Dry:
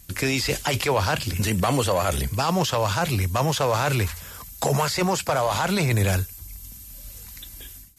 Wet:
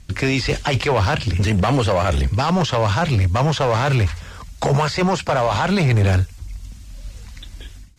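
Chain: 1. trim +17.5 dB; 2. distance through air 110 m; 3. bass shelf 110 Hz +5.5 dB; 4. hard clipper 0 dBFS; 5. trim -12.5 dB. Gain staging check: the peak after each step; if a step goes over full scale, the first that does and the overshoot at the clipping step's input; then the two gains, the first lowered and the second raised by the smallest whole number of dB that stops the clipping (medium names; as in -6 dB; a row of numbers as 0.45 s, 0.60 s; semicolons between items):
+7.5 dBFS, +7.0 dBFS, +7.0 dBFS, 0.0 dBFS, -12.5 dBFS; step 1, 7.0 dB; step 1 +10.5 dB, step 5 -5.5 dB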